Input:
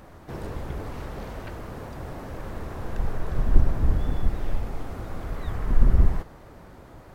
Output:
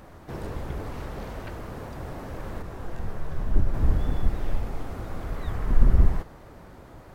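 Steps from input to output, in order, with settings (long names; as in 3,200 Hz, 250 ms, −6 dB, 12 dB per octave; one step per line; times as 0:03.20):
0:02.62–0:03.74: micro pitch shift up and down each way 18 cents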